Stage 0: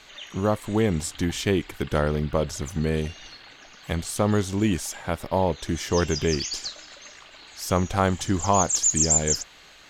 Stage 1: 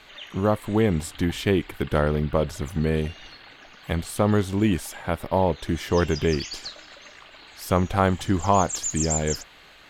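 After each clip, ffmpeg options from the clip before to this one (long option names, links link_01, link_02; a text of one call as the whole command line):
ffmpeg -i in.wav -af "equalizer=frequency=6300:width=1.4:gain=-10,volume=1.5dB" out.wav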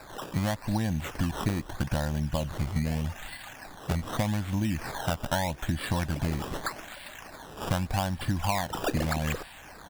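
ffmpeg -i in.wav -af "aecho=1:1:1.2:0.94,acompressor=threshold=-24dB:ratio=12,acrusher=samples=14:mix=1:aa=0.000001:lfo=1:lforange=14:lforate=0.82" out.wav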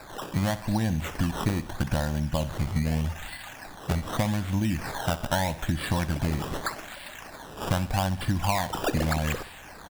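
ffmpeg -i in.wav -af "aecho=1:1:63|126|189|252:0.178|0.0818|0.0376|0.0173,volume=2dB" out.wav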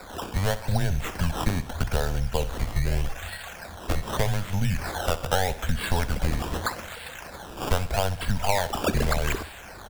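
ffmpeg -i in.wav -af "afreqshift=-95,volume=2.5dB" out.wav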